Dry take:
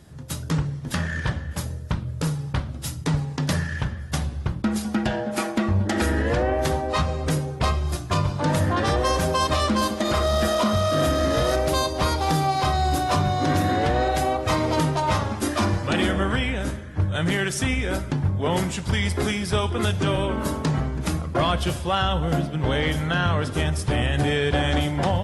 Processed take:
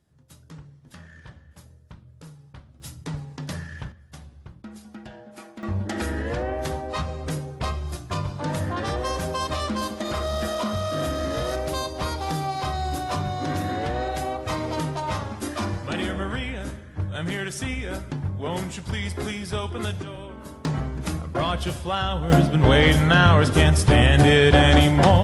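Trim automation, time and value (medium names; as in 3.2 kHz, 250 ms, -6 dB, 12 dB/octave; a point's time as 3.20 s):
-19.5 dB
from 2.80 s -9 dB
from 3.92 s -17.5 dB
from 5.63 s -5.5 dB
from 20.02 s -14 dB
from 20.65 s -3 dB
from 22.30 s +7 dB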